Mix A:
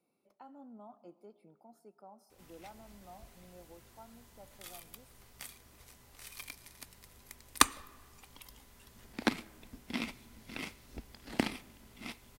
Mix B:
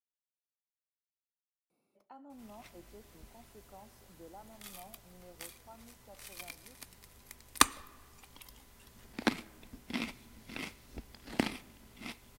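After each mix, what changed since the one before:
speech: entry +1.70 s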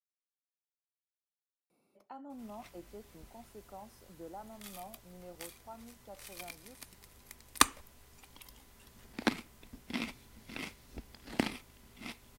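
speech +6.0 dB; reverb: off

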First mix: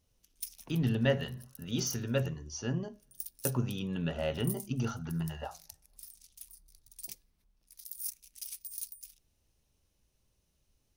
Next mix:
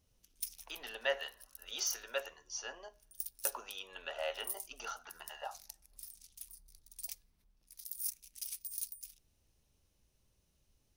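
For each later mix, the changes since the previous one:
speech: add high-pass 620 Hz 24 dB/octave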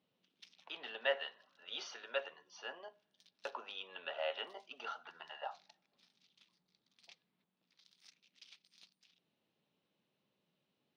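master: add elliptic band-pass 170–3700 Hz, stop band 50 dB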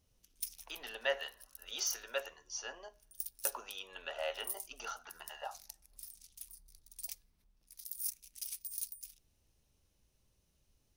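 master: remove elliptic band-pass 170–3700 Hz, stop band 50 dB

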